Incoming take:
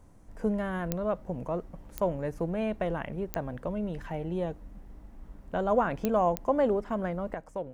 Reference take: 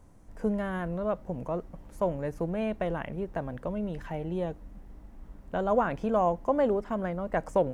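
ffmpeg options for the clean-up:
ffmpeg -i in.wav -af "adeclick=threshold=4,asetnsamples=nb_out_samples=441:pad=0,asendcmd='7.34 volume volume 10.5dB',volume=0dB" out.wav

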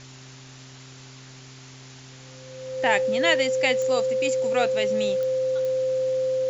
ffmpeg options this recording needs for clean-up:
ffmpeg -i in.wav -af "adeclick=threshold=4,bandreject=frequency=130.8:width_type=h:width=4,bandreject=frequency=261.6:width_type=h:width=4,bandreject=frequency=392.4:width_type=h:width=4,bandreject=frequency=520:width=30,afwtdn=0.0063" out.wav

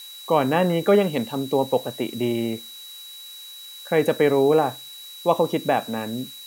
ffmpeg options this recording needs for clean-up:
ffmpeg -i in.wav -af "bandreject=frequency=3900:width=30,afftdn=noise_reduction=25:noise_floor=-41" out.wav

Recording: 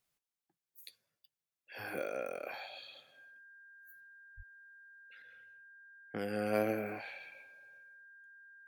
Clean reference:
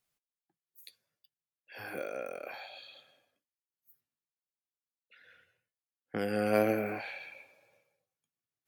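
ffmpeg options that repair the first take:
ffmpeg -i in.wav -filter_complex "[0:a]bandreject=frequency=1600:width=30,asplit=3[link_01][link_02][link_03];[link_01]afade=type=out:start_time=4.36:duration=0.02[link_04];[link_02]highpass=frequency=140:width=0.5412,highpass=frequency=140:width=1.3066,afade=type=in:start_time=4.36:duration=0.02,afade=type=out:start_time=4.48:duration=0.02[link_05];[link_03]afade=type=in:start_time=4.48:duration=0.02[link_06];[link_04][link_05][link_06]amix=inputs=3:normalize=0,asetnsamples=nb_out_samples=441:pad=0,asendcmd='5.22 volume volume 5dB',volume=0dB" out.wav

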